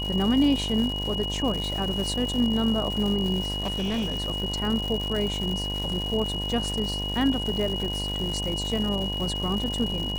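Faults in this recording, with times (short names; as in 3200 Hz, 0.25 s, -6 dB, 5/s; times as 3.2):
buzz 50 Hz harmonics 21 -32 dBFS
crackle 280/s -30 dBFS
tone 2900 Hz -30 dBFS
3.6–4.28 clipped -23.5 dBFS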